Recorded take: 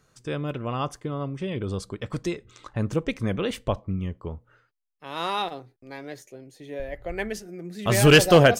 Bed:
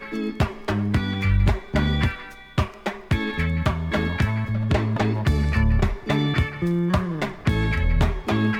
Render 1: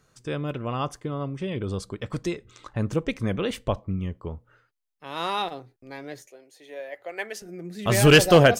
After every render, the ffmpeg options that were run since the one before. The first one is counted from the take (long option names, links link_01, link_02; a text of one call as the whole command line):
ffmpeg -i in.wav -filter_complex "[0:a]asettb=1/sr,asplit=3[link_01][link_02][link_03];[link_01]atrim=end=6.274[link_04];[link_02]atrim=start=6.27:end=7.42,asetpts=PTS-STARTPTS,afade=type=in:duration=0.004:curve=qsin,afade=type=out:start_time=1.146:duration=0.004:curve=qsin,highpass=530[link_05];[link_03]atrim=start=7.416[link_06];[link_04][link_05]acrossfade=duration=0.004:curve1=hsin:curve2=qsin[link_07];[link_07][link_06]acrossfade=duration=0.004:curve1=qsin:curve2=hsin" out.wav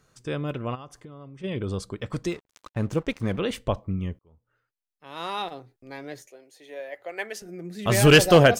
ffmpeg -i in.wav -filter_complex "[0:a]asplit=3[link_01][link_02][link_03];[link_01]afade=type=out:start_time=0.74:duration=0.02[link_04];[link_02]acompressor=threshold=-44dB:ratio=3:attack=3.2:release=140:knee=1:detection=peak,afade=type=in:start_time=0.74:duration=0.02,afade=type=out:start_time=1.43:duration=0.02[link_05];[link_03]afade=type=in:start_time=1.43:duration=0.02[link_06];[link_04][link_05][link_06]amix=inputs=3:normalize=0,asettb=1/sr,asplit=3[link_07][link_08][link_09];[link_07]atrim=end=2.284[link_10];[link_08]atrim=start=2.28:end=3.39,asetpts=PTS-STARTPTS,afade=type=in:duration=0.004:curve=qsin,afade=type=out:start_time=1.106:duration=0.004:curve=qsin,aeval=exprs='sgn(val(0))*max(abs(val(0))-0.00473,0)':channel_layout=same[link_11];[link_09]atrim=start=3.386[link_12];[link_10][link_11]acrossfade=duration=0.004:curve1=hsin:curve2=qsin[link_13];[link_13][link_12]acrossfade=duration=0.004:curve1=qsin:curve2=hsin,asplit=2[link_14][link_15];[link_14]atrim=end=4.19,asetpts=PTS-STARTPTS,afade=type=out:start_time=4.186:duration=0.004:curve=hsin[link_16];[link_15]atrim=start=4.19,asetpts=PTS-STARTPTS,afade=type=in:duration=1.74[link_17];[link_16][link_17]concat=n=2:v=0:a=1" out.wav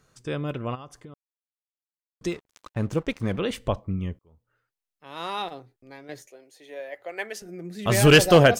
ffmpeg -i in.wav -filter_complex "[0:a]asettb=1/sr,asplit=3[link_01][link_02][link_03];[link_01]atrim=end=3.374[link_04];[link_02]atrim=start=3.37:end=3.78,asetpts=PTS-STARTPTS,afade=type=in:duration=0.004:curve=qsin,afade=type=out:start_time=0.406:duration=0.004:curve=qsin,acompressor=mode=upward:threshold=-37dB:ratio=2.5:attack=3.2:release=140:knee=2.83:detection=peak[link_05];[link_03]atrim=start=3.776[link_06];[link_04][link_05]acrossfade=duration=0.004:curve1=hsin:curve2=qsin[link_07];[link_07][link_06]acrossfade=duration=0.004:curve1=qsin:curve2=hsin,asplit=4[link_08][link_09][link_10][link_11];[link_08]atrim=end=1.14,asetpts=PTS-STARTPTS,afade=type=out:start_time=1.136:duration=0.004:curve=hsin[link_12];[link_09]atrim=start=1.14:end=2.21,asetpts=PTS-STARTPTS,volume=0[link_13];[link_10]atrim=start=2.21:end=6.09,asetpts=PTS-STARTPTS,afade=type=in:duration=0.004:curve=hsin,afade=type=out:start_time=3.29:duration=0.59:silence=0.398107[link_14];[link_11]atrim=start=6.09,asetpts=PTS-STARTPTS,afade=type=in:duration=0.004:curve=hsin:silence=0.398107[link_15];[link_12][link_13][link_14][link_15]concat=n=4:v=0:a=1" out.wav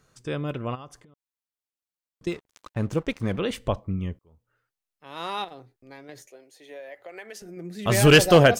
ffmpeg -i in.wav -filter_complex "[0:a]asettb=1/sr,asplit=3[link_01][link_02][link_03];[link_01]atrim=end=0.964[link_04];[link_02]atrim=start=0.96:end=2.27,asetpts=PTS-STARTPTS,afade=type=in:duration=0.004:curve=qsin,afade=type=out:start_time=1.306:duration=0.004:curve=qsin,acompressor=threshold=-50dB:ratio=16:attack=3.2:release=140:knee=1:detection=peak[link_05];[link_03]atrim=start=2.266[link_06];[link_04][link_05]acrossfade=duration=0.004:curve1=hsin:curve2=qsin[link_07];[link_07][link_06]acrossfade=duration=0.004:curve1=qsin:curve2=hsin,asettb=1/sr,asplit=3[link_08][link_09][link_10];[link_08]atrim=end=5.444[link_11];[link_09]atrim=start=5.44:end=7.57,asetpts=PTS-STARTPTS,afade=type=in:duration=0.004:curve=qsin,afade=type=out:start_time=2.126:duration=0.004:curve=qsin,acompressor=threshold=-37dB:ratio=4:attack=3.2:release=140:knee=1:detection=peak[link_12];[link_10]atrim=start=7.566[link_13];[link_11][link_12]acrossfade=duration=0.004:curve1=hsin:curve2=qsin[link_14];[link_14][link_13]acrossfade=duration=0.004:curve1=qsin:curve2=hsin" out.wav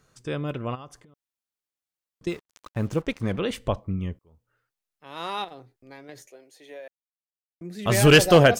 ffmpeg -i in.wav -filter_complex "[0:a]asettb=1/sr,asplit=3[link_01][link_02][link_03];[link_01]atrim=end=2.294[link_04];[link_02]atrim=start=2.29:end=3.02,asetpts=PTS-STARTPTS,afade=type=in:duration=0.004:curve=qsin,afade=type=out:start_time=0.726:duration=0.004:curve=qsin,acrusher=bits=8:mix=0:aa=0.5[link_05];[link_03]atrim=start=3.016[link_06];[link_04][link_05]acrossfade=duration=0.004:curve1=hsin:curve2=qsin[link_07];[link_07][link_06]acrossfade=duration=0.004:curve1=qsin:curve2=hsin,asplit=3[link_08][link_09][link_10];[link_08]atrim=end=6.88,asetpts=PTS-STARTPTS,afade=type=out:start_time=6.876:duration=0.004:curve=hsin[link_11];[link_09]atrim=start=6.88:end=7.61,asetpts=PTS-STARTPTS,volume=0[link_12];[link_10]atrim=start=7.61,asetpts=PTS-STARTPTS,afade=type=in:duration=0.004:curve=hsin[link_13];[link_11][link_12][link_13]concat=n=3:v=0:a=1" out.wav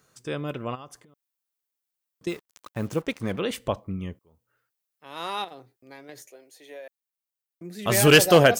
ffmpeg -i in.wav -af "highpass=frequency=160:poles=1,highshelf=frequency=11000:gain=10.5" out.wav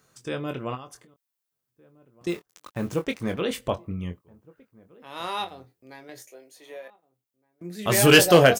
ffmpeg -i in.wav -filter_complex "[0:a]asplit=2[link_01][link_02];[link_02]adelay=23,volume=-8dB[link_03];[link_01][link_03]amix=inputs=2:normalize=0,asplit=2[link_04][link_05];[link_05]adelay=1516,volume=-25dB,highshelf=frequency=4000:gain=-34.1[link_06];[link_04][link_06]amix=inputs=2:normalize=0" out.wav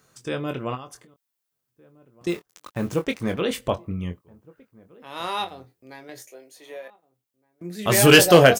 ffmpeg -i in.wav -af "volume=2.5dB,alimiter=limit=-1dB:level=0:latency=1" out.wav